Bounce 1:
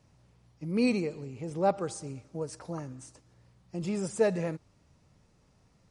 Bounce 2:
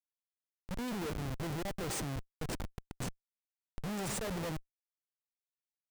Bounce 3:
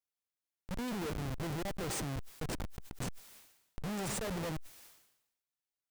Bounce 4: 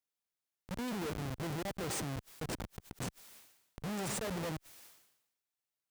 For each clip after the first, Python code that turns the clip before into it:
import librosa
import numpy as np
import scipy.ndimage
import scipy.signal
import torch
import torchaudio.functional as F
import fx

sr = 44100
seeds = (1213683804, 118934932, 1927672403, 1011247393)

y1 = fx.auto_swell(x, sr, attack_ms=282.0)
y1 = fx.high_shelf(y1, sr, hz=8400.0, db=10.0)
y1 = fx.schmitt(y1, sr, flips_db=-40.5)
y1 = y1 * librosa.db_to_amplitude(2.5)
y2 = fx.sustainer(y1, sr, db_per_s=66.0)
y3 = fx.highpass(y2, sr, hz=74.0, slope=6)